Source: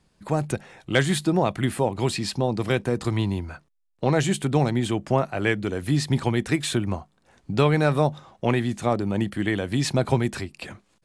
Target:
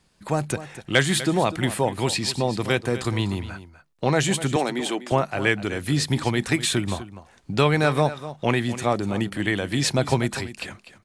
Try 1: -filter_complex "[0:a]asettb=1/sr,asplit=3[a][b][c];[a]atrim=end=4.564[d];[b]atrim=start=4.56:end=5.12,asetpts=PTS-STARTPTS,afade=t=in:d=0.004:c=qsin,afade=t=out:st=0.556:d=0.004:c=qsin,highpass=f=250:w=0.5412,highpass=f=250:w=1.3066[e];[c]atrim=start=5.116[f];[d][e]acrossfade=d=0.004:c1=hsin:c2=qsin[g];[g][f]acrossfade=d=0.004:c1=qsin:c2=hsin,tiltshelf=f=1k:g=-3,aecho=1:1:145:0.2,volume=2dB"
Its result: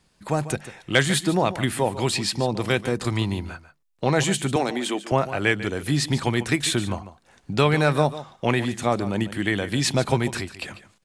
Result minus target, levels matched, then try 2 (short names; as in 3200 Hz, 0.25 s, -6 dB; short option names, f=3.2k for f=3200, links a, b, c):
echo 0.103 s early
-filter_complex "[0:a]asettb=1/sr,asplit=3[a][b][c];[a]atrim=end=4.564[d];[b]atrim=start=4.56:end=5.12,asetpts=PTS-STARTPTS,afade=t=in:d=0.004:c=qsin,afade=t=out:st=0.556:d=0.004:c=qsin,highpass=f=250:w=0.5412,highpass=f=250:w=1.3066[e];[c]atrim=start=5.116[f];[d][e]acrossfade=d=0.004:c1=hsin:c2=qsin[g];[g][f]acrossfade=d=0.004:c1=qsin:c2=hsin,tiltshelf=f=1k:g=-3,aecho=1:1:248:0.2,volume=2dB"